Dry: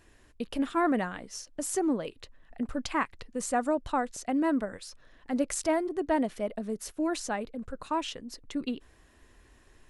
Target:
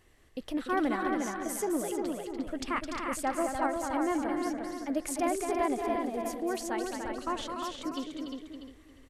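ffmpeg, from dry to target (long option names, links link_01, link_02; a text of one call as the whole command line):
ffmpeg -i in.wav -filter_complex "[0:a]asplit=2[link_01][link_02];[link_02]adelay=384,lowpass=frequency=5000:poles=1,volume=-4.5dB,asplit=2[link_03][link_04];[link_04]adelay=384,lowpass=frequency=5000:poles=1,volume=0.23,asplit=2[link_05][link_06];[link_06]adelay=384,lowpass=frequency=5000:poles=1,volume=0.23[link_07];[link_03][link_05][link_07]amix=inputs=3:normalize=0[link_08];[link_01][link_08]amix=inputs=2:normalize=0,asetrate=48000,aresample=44100,asplit=2[link_09][link_10];[link_10]aecho=0:1:212.8|291.5:0.447|0.447[link_11];[link_09][link_11]amix=inputs=2:normalize=0,volume=-3.5dB" out.wav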